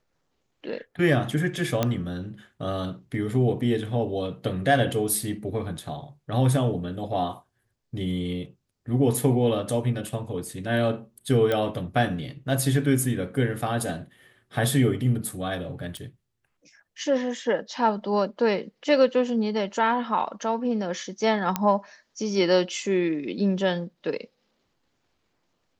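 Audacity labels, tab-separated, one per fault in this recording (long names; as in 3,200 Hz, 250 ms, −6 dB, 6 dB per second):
1.830000	1.830000	click −9 dBFS
11.520000	11.520000	click −13 dBFS
15.970000	15.970000	click
21.560000	21.560000	click −8 dBFS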